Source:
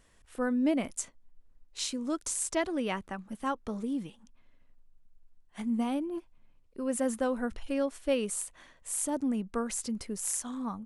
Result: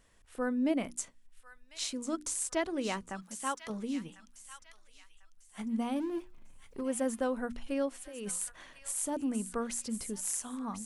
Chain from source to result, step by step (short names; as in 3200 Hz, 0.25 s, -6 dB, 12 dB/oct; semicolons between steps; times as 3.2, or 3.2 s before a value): 3.22–3.7 tilt +3 dB/oct; 5.96–6.81 power-law curve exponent 0.7; 8.06–8.96 negative-ratio compressor -37 dBFS, ratio -1; notches 60/120/180/240/300/360 Hz; thin delay 1.047 s, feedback 33%, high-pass 1800 Hz, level -9 dB; gain -2 dB